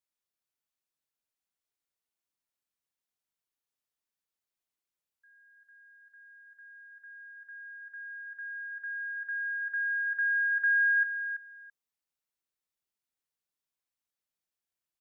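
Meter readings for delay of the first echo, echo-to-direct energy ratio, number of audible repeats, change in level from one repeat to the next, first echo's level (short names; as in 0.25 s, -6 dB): 0.333 s, -9.5 dB, 2, -15.5 dB, -9.5 dB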